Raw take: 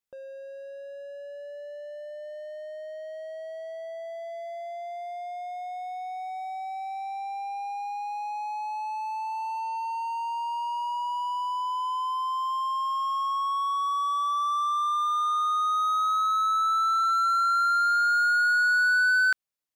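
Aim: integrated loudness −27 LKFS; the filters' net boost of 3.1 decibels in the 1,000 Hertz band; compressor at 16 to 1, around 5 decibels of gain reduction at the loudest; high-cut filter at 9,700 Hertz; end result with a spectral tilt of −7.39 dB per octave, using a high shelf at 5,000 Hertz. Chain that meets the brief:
low-pass filter 9,700 Hz
parametric band 1,000 Hz +3.5 dB
high-shelf EQ 5,000 Hz +8.5 dB
downward compressor 16 to 1, threshold −23 dBFS
level +0.5 dB

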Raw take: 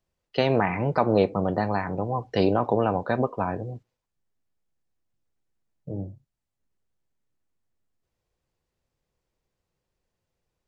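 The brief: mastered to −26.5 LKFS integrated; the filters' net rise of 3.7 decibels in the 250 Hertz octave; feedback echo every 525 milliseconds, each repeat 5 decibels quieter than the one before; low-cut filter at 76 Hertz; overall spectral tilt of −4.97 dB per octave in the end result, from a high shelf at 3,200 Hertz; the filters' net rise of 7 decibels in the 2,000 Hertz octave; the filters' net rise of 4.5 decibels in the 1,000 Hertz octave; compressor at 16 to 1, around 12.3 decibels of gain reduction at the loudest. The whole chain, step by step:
high-pass filter 76 Hz
parametric band 250 Hz +4.5 dB
parametric band 1,000 Hz +4 dB
parametric band 2,000 Hz +5 dB
high-shelf EQ 3,200 Hz +7.5 dB
downward compressor 16 to 1, threshold −25 dBFS
repeating echo 525 ms, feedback 56%, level −5 dB
level +5 dB

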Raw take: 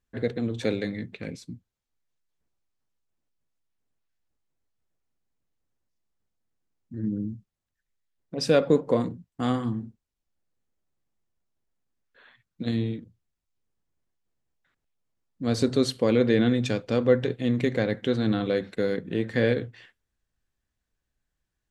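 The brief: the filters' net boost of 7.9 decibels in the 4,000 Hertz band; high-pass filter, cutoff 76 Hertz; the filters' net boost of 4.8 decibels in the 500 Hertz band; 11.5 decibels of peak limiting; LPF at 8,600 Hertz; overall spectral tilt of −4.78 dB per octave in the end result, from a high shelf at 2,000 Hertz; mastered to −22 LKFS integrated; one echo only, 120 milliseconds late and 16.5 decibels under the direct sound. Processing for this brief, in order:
high-pass filter 76 Hz
low-pass filter 8,600 Hz
parametric band 500 Hz +5 dB
high-shelf EQ 2,000 Hz +3 dB
parametric band 4,000 Hz +6.5 dB
brickwall limiter −15 dBFS
single-tap delay 120 ms −16.5 dB
level +5 dB

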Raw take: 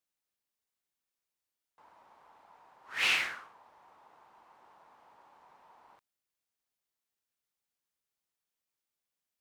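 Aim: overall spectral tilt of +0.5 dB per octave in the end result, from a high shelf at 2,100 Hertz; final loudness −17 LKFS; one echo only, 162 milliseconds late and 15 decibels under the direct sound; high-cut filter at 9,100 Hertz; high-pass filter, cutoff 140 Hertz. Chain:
high-pass filter 140 Hz
low-pass filter 9,100 Hz
high-shelf EQ 2,100 Hz −4.5 dB
single-tap delay 162 ms −15 dB
level +16 dB

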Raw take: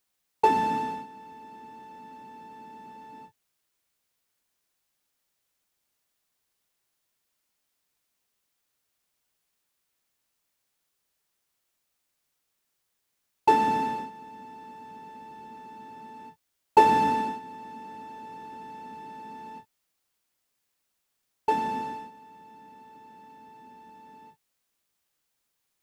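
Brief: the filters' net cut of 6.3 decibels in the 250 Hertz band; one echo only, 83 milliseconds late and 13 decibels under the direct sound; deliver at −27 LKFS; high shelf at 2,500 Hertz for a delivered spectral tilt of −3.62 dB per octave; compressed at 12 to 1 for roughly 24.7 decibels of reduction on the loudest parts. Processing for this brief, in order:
parametric band 250 Hz −8 dB
high-shelf EQ 2,500 Hz +4 dB
downward compressor 12 to 1, threshold −39 dBFS
single-tap delay 83 ms −13 dB
level +17 dB

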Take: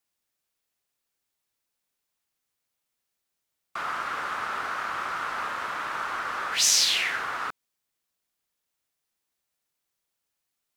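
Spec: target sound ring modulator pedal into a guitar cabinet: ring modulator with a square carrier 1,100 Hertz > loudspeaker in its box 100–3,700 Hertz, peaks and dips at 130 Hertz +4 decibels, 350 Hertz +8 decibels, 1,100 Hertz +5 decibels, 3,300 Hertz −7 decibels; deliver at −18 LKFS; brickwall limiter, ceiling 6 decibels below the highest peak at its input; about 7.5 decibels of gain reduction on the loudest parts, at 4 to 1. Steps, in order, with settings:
downward compressor 4 to 1, threshold −26 dBFS
brickwall limiter −22 dBFS
ring modulator with a square carrier 1,100 Hz
loudspeaker in its box 100–3,700 Hz, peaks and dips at 130 Hz +4 dB, 350 Hz +8 dB, 1,100 Hz +5 dB, 3,300 Hz −7 dB
level +14.5 dB

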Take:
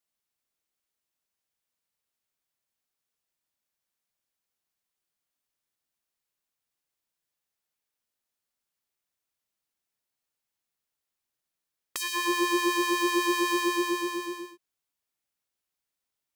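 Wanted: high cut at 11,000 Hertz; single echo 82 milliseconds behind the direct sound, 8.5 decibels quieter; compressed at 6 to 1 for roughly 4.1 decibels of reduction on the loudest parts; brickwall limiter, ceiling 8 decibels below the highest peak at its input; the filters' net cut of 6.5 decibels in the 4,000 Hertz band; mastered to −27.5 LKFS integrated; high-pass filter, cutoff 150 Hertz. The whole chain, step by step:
high-pass filter 150 Hz
low-pass filter 11,000 Hz
parametric band 4,000 Hz −8.5 dB
downward compressor 6 to 1, threshold −27 dBFS
brickwall limiter −25 dBFS
single-tap delay 82 ms −8.5 dB
level +5.5 dB

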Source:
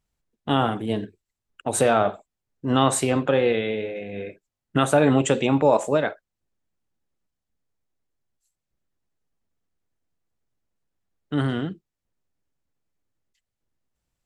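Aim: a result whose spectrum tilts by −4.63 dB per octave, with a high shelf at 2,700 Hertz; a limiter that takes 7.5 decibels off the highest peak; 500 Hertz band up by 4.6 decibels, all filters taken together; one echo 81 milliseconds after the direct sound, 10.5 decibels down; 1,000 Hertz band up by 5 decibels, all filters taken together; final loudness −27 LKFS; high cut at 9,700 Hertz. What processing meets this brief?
low-pass filter 9,700 Hz
parametric band 500 Hz +4 dB
parametric band 1,000 Hz +4.5 dB
high-shelf EQ 2,700 Hz +5 dB
brickwall limiter −8.5 dBFS
single-tap delay 81 ms −10.5 dB
level −6 dB

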